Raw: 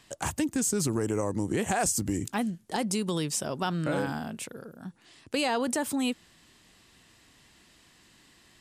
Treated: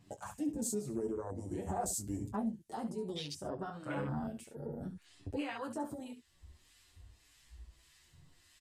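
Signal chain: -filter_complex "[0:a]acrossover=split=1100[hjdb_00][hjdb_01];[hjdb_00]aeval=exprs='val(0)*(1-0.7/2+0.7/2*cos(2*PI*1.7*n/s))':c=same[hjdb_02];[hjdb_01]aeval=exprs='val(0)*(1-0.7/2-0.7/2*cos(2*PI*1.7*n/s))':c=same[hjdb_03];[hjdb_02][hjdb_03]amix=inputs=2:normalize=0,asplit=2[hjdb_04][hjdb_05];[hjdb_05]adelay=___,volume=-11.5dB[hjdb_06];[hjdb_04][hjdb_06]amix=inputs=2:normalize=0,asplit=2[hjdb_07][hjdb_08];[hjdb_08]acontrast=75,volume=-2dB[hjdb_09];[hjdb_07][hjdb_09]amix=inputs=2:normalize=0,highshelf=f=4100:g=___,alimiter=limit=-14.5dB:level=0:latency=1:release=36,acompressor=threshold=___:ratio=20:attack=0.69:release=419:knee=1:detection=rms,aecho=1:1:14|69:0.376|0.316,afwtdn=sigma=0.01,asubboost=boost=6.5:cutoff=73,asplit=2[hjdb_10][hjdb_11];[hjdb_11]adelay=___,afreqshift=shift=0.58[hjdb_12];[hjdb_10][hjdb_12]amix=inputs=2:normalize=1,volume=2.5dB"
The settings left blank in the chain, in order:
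21, 5.5, -29dB, 7.9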